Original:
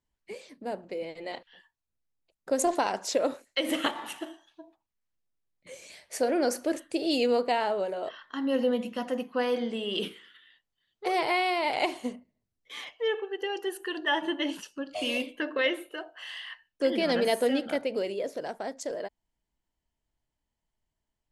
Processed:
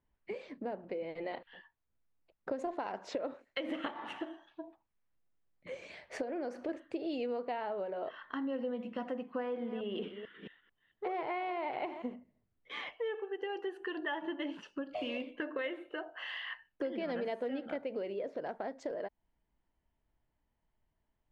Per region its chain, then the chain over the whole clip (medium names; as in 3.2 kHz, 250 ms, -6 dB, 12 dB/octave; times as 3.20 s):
6.22–6.69 s: band-stop 1.4 kHz, Q 16 + compression 1.5:1, threshold -36 dBFS
9.37–12.14 s: chunks repeated in reverse 221 ms, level -12.5 dB + treble shelf 4 kHz -10.5 dB + band-stop 4.6 kHz, Q 11
whole clip: low-pass 2.2 kHz 12 dB/octave; compression 4:1, threshold -41 dBFS; trim +4 dB